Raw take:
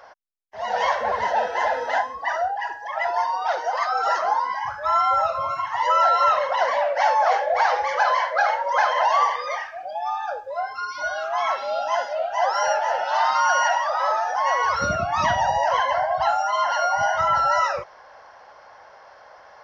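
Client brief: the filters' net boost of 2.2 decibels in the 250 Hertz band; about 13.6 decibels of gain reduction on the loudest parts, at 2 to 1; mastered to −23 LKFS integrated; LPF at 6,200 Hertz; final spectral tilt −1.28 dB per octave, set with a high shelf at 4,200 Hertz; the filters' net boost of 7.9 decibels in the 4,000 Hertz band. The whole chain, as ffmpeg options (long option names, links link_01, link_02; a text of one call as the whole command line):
ffmpeg -i in.wav -af "lowpass=6200,equalizer=frequency=250:width_type=o:gain=3,equalizer=frequency=4000:width_type=o:gain=8,highshelf=frequency=4200:gain=6.5,acompressor=threshold=-40dB:ratio=2,volume=9.5dB" out.wav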